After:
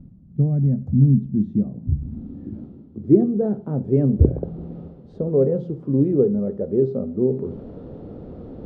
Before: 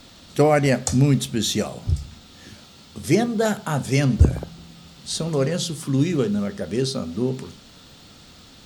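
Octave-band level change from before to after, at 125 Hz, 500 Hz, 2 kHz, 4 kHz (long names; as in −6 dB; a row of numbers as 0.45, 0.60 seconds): +2.0 dB, +1.5 dB, below −25 dB, below −35 dB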